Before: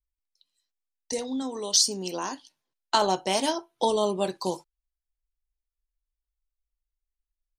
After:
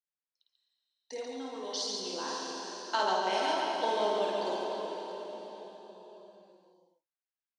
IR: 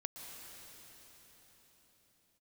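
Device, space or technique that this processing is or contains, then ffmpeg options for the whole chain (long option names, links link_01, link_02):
station announcement: -filter_complex "[0:a]highpass=390,lowpass=4000,equalizer=frequency=1600:width_type=o:width=0.21:gain=5.5,aecho=1:1:52.48|139.9:0.794|0.708[link_01];[1:a]atrim=start_sample=2205[link_02];[link_01][link_02]afir=irnorm=-1:irlink=0,asettb=1/sr,asplit=3[link_03][link_04][link_05];[link_03]atrim=end=1.144[link_06];[link_04]atrim=start=1.14:end=2.28,asetpts=PTS-STARTPTS,afade=type=in:duration=0.004:curve=qsin,afade=type=out:start_time=1.136:duration=0.004:curve=qsin,equalizer=frequency=8500:width_type=o:width=1.6:gain=-4[link_07];[link_05]atrim=start=2.276[link_08];[link_06][link_07]acrossfade=duration=0.004:curve1=hsin:curve2=qsin[link_09];[link_09][link_08]acrossfade=duration=0.004:curve1=qsin:curve2=hsin,volume=-4.5dB"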